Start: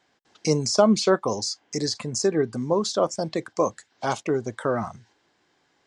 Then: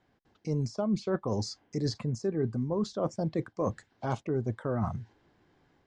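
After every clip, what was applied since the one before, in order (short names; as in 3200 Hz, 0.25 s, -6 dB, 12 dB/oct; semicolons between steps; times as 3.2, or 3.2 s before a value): AGC gain up to 3.5 dB; RIAA curve playback; reverse; compressor 6:1, threshold -22 dBFS, peak gain reduction 15 dB; reverse; gain -5 dB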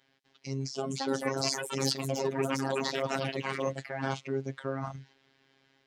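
echoes that change speed 0.418 s, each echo +5 st, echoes 3; weighting filter D; robotiser 135 Hz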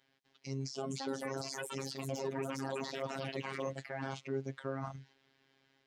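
limiter -20 dBFS, peak gain reduction 11 dB; gain -4.5 dB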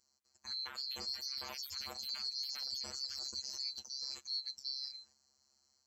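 band-swap scrambler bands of 4000 Hz; gain -3 dB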